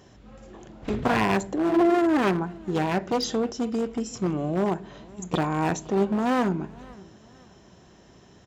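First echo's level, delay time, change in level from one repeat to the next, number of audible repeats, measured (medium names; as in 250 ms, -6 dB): -23.5 dB, 516 ms, -9.0 dB, 2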